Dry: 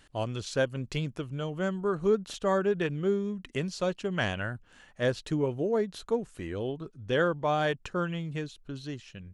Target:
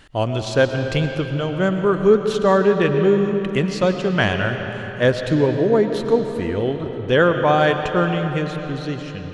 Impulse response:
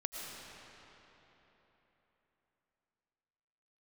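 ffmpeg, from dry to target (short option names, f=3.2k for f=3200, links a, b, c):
-filter_complex "[0:a]asplit=2[a][b];[1:a]atrim=start_sample=2205,lowpass=5.3k[c];[b][c]afir=irnorm=-1:irlink=0,volume=0dB[d];[a][d]amix=inputs=2:normalize=0,volume=6dB"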